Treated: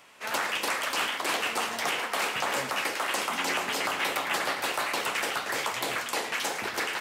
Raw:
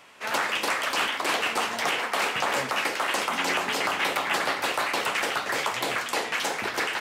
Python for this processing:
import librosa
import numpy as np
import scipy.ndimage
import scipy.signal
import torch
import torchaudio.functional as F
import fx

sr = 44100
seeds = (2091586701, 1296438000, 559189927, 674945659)

y = fx.high_shelf(x, sr, hz=7400.0, db=6.0)
y = y + 10.0 ** (-13.5 / 20.0) * np.pad(y, (int(109 * sr / 1000.0), 0))[:len(y)]
y = y * 10.0 ** (-3.5 / 20.0)